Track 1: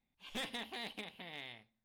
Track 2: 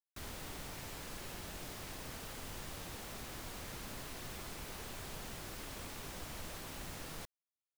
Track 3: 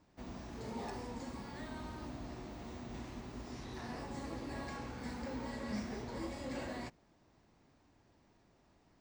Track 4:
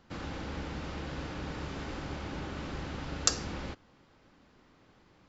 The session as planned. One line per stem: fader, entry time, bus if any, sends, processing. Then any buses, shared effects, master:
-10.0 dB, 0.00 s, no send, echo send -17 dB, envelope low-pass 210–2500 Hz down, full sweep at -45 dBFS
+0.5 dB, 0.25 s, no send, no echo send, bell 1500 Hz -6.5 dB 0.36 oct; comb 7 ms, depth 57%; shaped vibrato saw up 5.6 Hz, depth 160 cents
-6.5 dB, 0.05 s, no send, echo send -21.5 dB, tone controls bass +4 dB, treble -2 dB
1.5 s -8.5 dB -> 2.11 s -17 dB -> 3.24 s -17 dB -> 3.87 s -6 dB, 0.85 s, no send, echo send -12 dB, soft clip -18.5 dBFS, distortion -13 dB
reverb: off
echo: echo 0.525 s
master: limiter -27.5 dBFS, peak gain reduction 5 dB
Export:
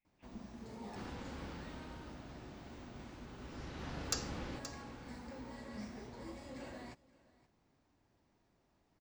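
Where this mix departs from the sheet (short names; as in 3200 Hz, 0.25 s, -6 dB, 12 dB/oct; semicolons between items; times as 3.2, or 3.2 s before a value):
stem 2: muted; stem 3: missing tone controls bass +4 dB, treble -2 dB; master: missing limiter -27.5 dBFS, peak gain reduction 5 dB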